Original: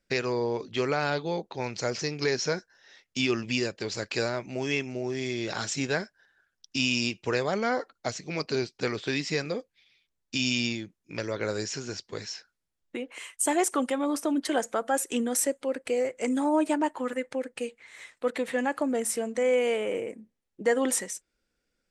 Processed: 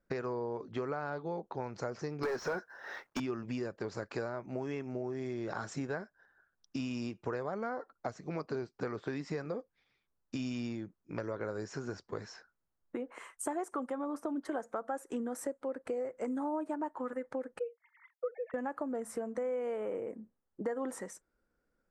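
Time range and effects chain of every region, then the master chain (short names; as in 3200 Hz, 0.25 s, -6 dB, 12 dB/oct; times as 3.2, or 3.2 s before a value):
2.23–3.2 overdrive pedal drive 25 dB, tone 3600 Hz, clips at -12.5 dBFS + companded quantiser 6-bit + mismatched tape noise reduction decoder only
17.59–18.54 sine-wave speech + expander -54 dBFS
whole clip: resonant high shelf 1900 Hz -13 dB, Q 1.5; compressor 4:1, threshold -35 dBFS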